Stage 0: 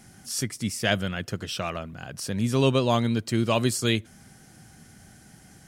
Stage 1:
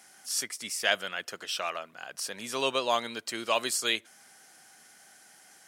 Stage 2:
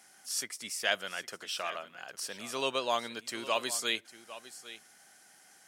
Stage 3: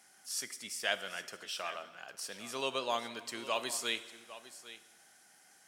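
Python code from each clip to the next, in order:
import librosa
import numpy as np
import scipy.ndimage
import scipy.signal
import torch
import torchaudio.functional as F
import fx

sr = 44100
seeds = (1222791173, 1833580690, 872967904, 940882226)

y1 = scipy.signal.sosfilt(scipy.signal.butter(2, 660.0, 'highpass', fs=sr, output='sos'), x)
y2 = y1 + 10.0 ** (-15.5 / 20.0) * np.pad(y1, (int(804 * sr / 1000.0), 0))[:len(y1)]
y2 = F.gain(torch.from_numpy(y2), -3.5).numpy()
y3 = fx.rev_plate(y2, sr, seeds[0], rt60_s=1.4, hf_ratio=0.9, predelay_ms=0, drr_db=12.5)
y3 = F.gain(torch.from_numpy(y3), -3.5).numpy()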